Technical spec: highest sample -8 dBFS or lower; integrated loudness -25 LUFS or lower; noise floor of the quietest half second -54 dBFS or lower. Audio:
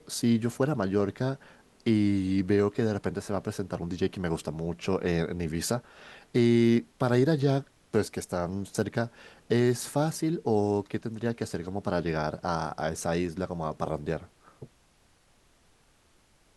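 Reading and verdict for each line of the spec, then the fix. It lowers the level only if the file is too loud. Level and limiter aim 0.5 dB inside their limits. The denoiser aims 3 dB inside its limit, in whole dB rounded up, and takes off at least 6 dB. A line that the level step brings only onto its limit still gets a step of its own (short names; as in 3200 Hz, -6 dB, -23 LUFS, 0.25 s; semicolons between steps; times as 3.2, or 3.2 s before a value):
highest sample -11.5 dBFS: OK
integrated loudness -29.0 LUFS: OK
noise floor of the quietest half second -64 dBFS: OK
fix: none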